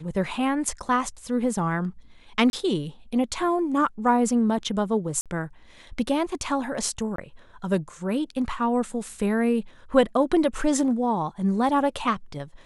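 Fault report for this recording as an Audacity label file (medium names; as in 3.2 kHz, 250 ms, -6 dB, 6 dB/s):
2.500000	2.530000	dropout 31 ms
5.210000	5.260000	dropout 47 ms
7.160000	7.180000	dropout 23 ms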